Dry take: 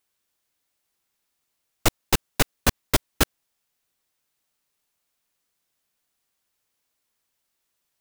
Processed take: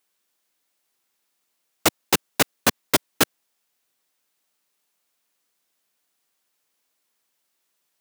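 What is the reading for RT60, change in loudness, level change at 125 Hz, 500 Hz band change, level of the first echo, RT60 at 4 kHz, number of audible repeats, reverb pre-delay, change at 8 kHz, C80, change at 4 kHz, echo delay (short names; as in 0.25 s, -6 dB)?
none, +2.5 dB, -6.0 dB, +3.0 dB, none, none, none, none, +3.0 dB, none, +3.0 dB, none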